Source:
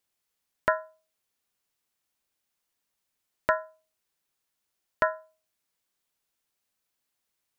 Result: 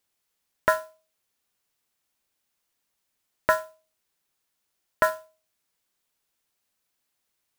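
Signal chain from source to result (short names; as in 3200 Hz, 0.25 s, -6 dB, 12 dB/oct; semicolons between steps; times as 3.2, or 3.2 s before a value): modulation noise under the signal 17 dB; gain +3 dB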